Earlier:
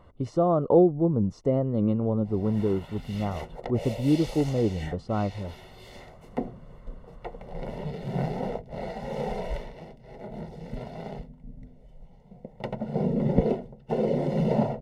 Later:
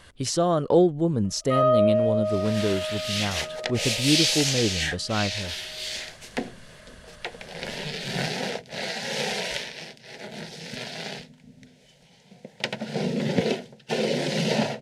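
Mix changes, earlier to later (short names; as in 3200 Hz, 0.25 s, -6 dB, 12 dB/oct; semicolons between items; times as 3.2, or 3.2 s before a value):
first sound: unmuted; second sound: add BPF 150–6300 Hz; master: remove polynomial smoothing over 65 samples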